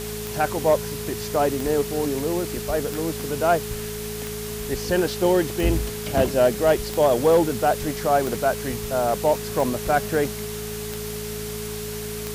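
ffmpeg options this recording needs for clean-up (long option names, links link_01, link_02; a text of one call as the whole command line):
ffmpeg -i in.wav -af "adeclick=threshold=4,bandreject=frequency=54.4:width_type=h:width=4,bandreject=frequency=108.8:width_type=h:width=4,bandreject=frequency=163.2:width_type=h:width=4,bandreject=frequency=217.6:width_type=h:width=4,bandreject=frequency=420:width=30,afwtdn=0.018" out.wav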